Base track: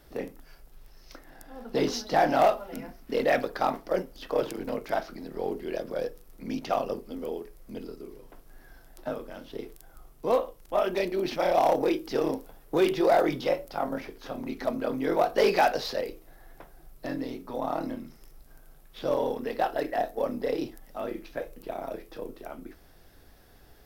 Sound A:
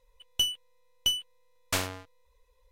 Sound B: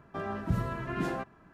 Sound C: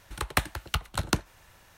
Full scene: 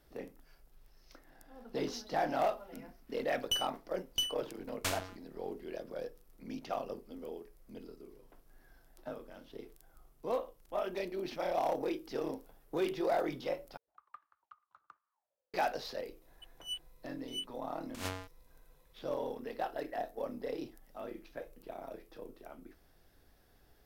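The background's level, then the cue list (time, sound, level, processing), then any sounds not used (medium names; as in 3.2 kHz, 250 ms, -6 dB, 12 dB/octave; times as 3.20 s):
base track -10 dB
3.12 s: add A -6.5 dB
13.77 s: replace with C -15 dB + auto-wah 440–1200 Hz, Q 16, up, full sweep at -31.5 dBFS
16.22 s: add A -6.5 dB + compressor with a negative ratio -34 dBFS, ratio -0.5
not used: B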